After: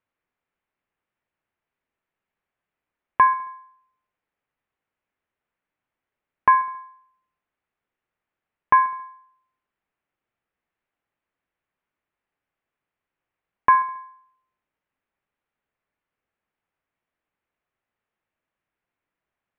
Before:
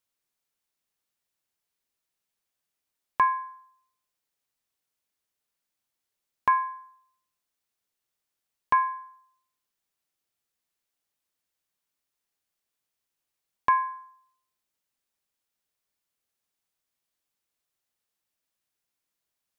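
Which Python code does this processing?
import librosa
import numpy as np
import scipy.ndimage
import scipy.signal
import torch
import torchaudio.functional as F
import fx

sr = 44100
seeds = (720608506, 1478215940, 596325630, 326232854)

p1 = scipy.signal.sosfilt(scipy.signal.butter(4, 2400.0, 'lowpass', fs=sr, output='sos'), x)
p2 = p1 + fx.echo_feedback(p1, sr, ms=68, feedback_pct=53, wet_db=-18.5, dry=0)
y = p2 * 10.0 ** (6.5 / 20.0)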